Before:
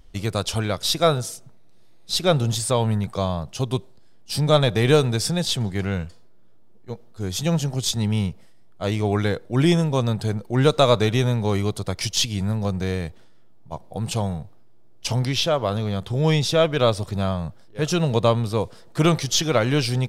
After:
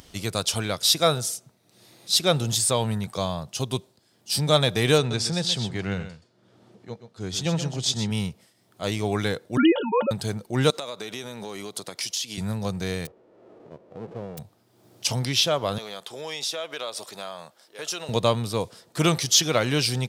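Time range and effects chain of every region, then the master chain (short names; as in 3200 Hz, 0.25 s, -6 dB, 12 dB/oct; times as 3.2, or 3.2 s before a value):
4.98–8.11 HPF 50 Hz + air absorption 77 m + echo 0.125 s -10.5 dB
9.57–10.11 sine-wave speech + small resonant body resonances 570/900/1400/2900 Hz, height 17 dB, ringing for 80 ms
10.7–12.38 HPF 250 Hz + compressor 8:1, threshold -28 dBFS
13.05–14.37 spectral whitening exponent 0.1 + synth low-pass 460 Hz, resonance Q 1.7
15.78–18.09 HPF 490 Hz + compressor 3:1, threshold -29 dBFS
whole clip: HPF 100 Hz; high shelf 2800 Hz +9 dB; upward compressor, threshold -36 dBFS; gain -3.5 dB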